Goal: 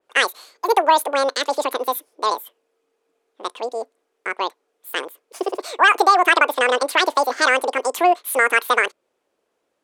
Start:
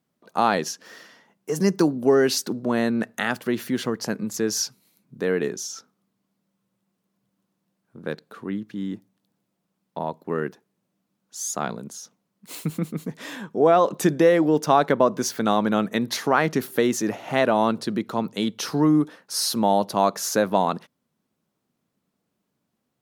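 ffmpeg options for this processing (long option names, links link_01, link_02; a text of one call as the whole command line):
ffmpeg -i in.wav -af "lowpass=frequency=4900:width=0.5412,lowpass=frequency=4900:width=1.3066,asetrate=103194,aresample=44100,adynamicequalizer=threshold=0.0224:dfrequency=3400:dqfactor=0.7:tfrequency=3400:tqfactor=0.7:attack=5:release=100:ratio=0.375:range=2:mode=cutabove:tftype=highshelf,volume=4dB" out.wav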